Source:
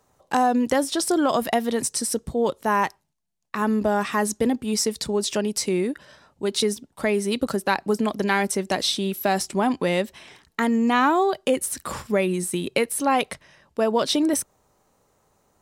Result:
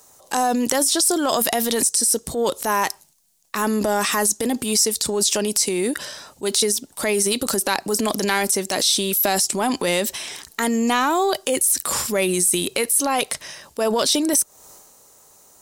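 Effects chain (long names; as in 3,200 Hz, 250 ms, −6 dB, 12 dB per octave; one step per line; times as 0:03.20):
bass and treble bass −7 dB, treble +15 dB
downward compressor 4 to 1, threshold −24 dBFS, peak gain reduction 13.5 dB
transient designer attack −6 dB, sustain +6 dB
level +7.5 dB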